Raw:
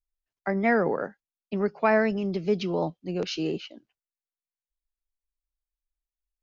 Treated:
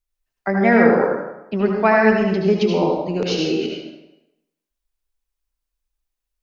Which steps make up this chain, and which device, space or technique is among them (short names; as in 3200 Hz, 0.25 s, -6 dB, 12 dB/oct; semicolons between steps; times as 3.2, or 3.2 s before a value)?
bathroom (reverb RT60 0.90 s, pre-delay 68 ms, DRR -0.5 dB); gain +6 dB